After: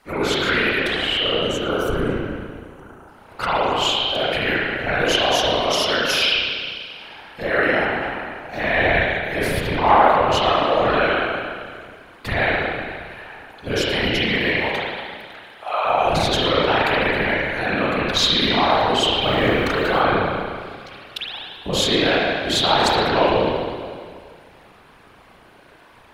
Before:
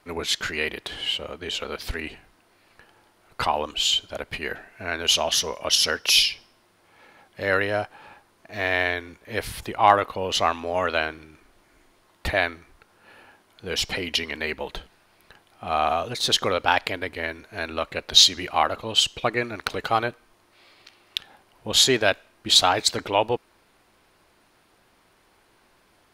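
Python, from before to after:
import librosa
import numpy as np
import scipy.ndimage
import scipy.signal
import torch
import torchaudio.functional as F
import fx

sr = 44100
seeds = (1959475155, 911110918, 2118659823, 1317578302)

p1 = fx.spec_box(x, sr, start_s=1.24, length_s=1.84, low_hz=1600.0, high_hz=5600.0, gain_db=-16)
p2 = fx.highpass(p1, sr, hz=610.0, slope=24, at=(14.52, 15.85))
p3 = fx.over_compress(p2, sr, threshold_db=-30.0, ratio=-1.0)
p4 = p2 + F.gain(torch.from_numpy(p3), 0.5).numpy()
p5 = fx.rev_spring(p4, sr, rt60_s=2.0, pass_ms=(33,), chirp_ms=45, drr_db=-9.5)
p6 = fx.quant_companded(p5, sr, bits=8, at=(19.21, 20.01))
p7 = fx.whisperise(p6, sr, seeds[0])
p8 = p7 + fx.echo_single(p7, sr, ms=113, db=-21.5, dry=0)
y = F.gain(torch.from_numpy(p8), -7.0).numpy()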